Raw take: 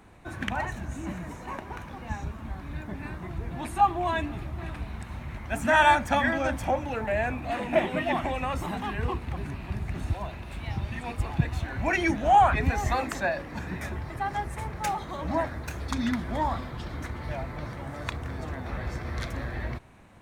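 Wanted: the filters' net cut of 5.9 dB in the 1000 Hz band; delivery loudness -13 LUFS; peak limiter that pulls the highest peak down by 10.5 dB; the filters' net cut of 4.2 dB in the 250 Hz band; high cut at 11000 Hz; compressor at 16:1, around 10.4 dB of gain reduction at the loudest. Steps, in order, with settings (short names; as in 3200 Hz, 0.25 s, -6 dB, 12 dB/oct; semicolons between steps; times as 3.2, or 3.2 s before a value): LPF 11000 Hz; bell 250 Hz -5 dB; bell 1000 Hz -7.5 dB; compressor 16:1, threshold -30 dBFS; gain +25.5 dB; limiter -2.5 dBFS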